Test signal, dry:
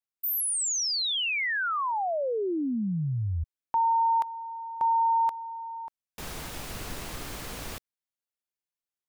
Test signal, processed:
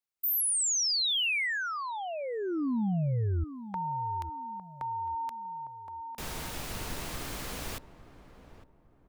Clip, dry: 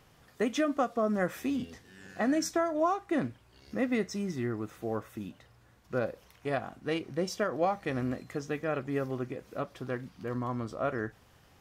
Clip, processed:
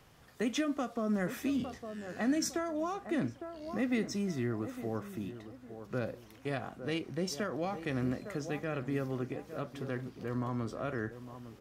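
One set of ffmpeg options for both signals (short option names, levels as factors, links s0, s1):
-filter_complex "[0:a]asplit=2[s0][s1];[s1]adelay=856,lowpass=f=960:p=1,volume=0.224,asplit=2[s2][s3];[s3]adelay=856,lowpass=f=960:p=1,volume=0.36,asplit=2[s4][s5];[s5]adelay=856,lowpass=f=960:p=1,volume=0.36,asplit=2[s6][s7];[s7]adelay=856,lowpass=f=960:p=1,volume=0.36[s8];[s2][s4][s6][s8]amix=inputs=4:normalize=0[s9];[s0][s9]amix=inputs=2:normalize=0,acrossover=split=310|2000[s10][s11][s12];[s11]acompressor=threshold=0.0112:ratio=3:attack=3.1:release=48:knee=2.83:detection=peak[s13];[s10][s13][s12]amix=inputs=3:normalize=0"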